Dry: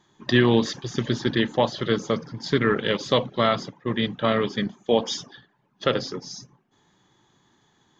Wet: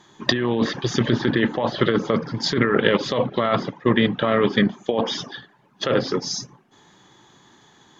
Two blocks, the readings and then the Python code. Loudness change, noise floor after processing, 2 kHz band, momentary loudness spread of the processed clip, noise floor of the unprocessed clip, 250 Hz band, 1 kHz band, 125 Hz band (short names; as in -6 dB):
+2.5 dB, -56 dBFS, +3.5 dB, 9 LU, -66 dBFS, +3.0 dB, +2.0 dB, +2.0 dB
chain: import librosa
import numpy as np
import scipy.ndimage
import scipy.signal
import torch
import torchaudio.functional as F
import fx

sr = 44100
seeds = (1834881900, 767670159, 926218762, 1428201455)

y = fx.env_lowpass_down(x, sr, base_hz=2400.0, full_db=-21.0)
y = fx.low_shelf(y, sr, hz=160.0, db=-6.5)
y = fx.over_compress(y, sr, threshold_db=-26.0, ratio=-1.0)
y = y * 10.0 ** (7.5 / 20.0)